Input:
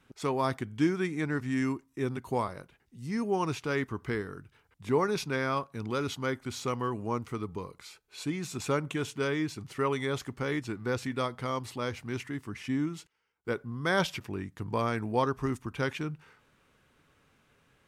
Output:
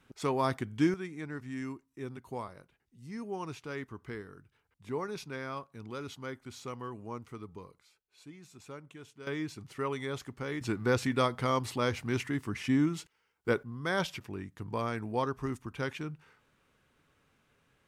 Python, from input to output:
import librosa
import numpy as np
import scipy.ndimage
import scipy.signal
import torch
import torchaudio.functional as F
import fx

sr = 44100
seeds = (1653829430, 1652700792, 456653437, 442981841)

y = fx.gain(x, sr, db=fx.steps((0.0, -0.5), (0.94, -9.0), (7.79, -17.0), (9.27, -5.0), (10.61, 3.5), (13.63, -4.0)))